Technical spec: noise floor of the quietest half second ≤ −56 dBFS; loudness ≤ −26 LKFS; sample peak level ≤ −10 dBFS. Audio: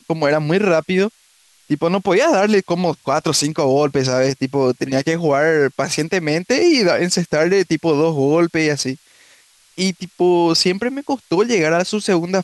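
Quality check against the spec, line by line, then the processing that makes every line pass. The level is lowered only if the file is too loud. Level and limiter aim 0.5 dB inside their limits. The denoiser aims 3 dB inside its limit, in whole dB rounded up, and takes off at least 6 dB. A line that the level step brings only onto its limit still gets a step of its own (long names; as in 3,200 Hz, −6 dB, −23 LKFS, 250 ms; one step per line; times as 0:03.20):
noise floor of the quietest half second −54 dBFS: out of spec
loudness −17.0 LKFS: out of spec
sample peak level −6.0 dBFS: out of spec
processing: level −9.5 dB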